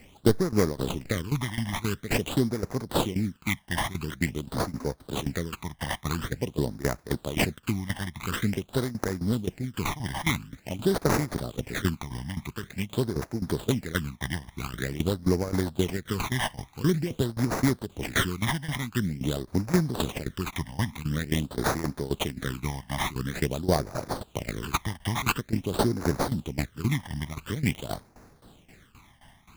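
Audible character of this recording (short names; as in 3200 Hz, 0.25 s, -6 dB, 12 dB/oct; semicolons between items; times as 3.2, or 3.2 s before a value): tremolo saw down 3.8 Hz, depth 85%; aliases and images of a low sample rate 5300 Hz, jitter 20%; phasing stages 12, 0.47 Hz, lowest notch 420–3100 Hz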